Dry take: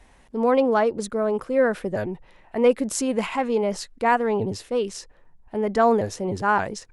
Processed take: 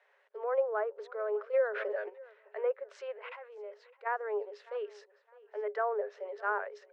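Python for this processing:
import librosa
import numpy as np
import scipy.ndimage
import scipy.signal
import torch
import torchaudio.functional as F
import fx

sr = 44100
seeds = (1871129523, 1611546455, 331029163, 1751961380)

y = fx.env_lowpass_down(x, sr, base_hz=1300.0, full_db=-16.5)
y = scipy.signal.sosfilt(scipy.signal.butter(2, 3500.0, 'lowpass', fs=sr, output='sos'), y)
y = fx.level_steps(y, sr, step_db=17, at=(3.12, 4.05), fade=0.02)
y = scipy.signal.sosfilt(scipy.signal.cheby1(6, 9, 400.0, 'highpass', fs=sr, output='sos'), y)
y = fx.echo_feedback(y, sr, ms=609, feedback_pct=29, wet_db=-21.5)
y = fx.pre_swell(y, sr, db_per_s=21.0, at=(1.53, 2.08), fade=0.02)
y = y * 10.0 ** (-5.5 / 20.0)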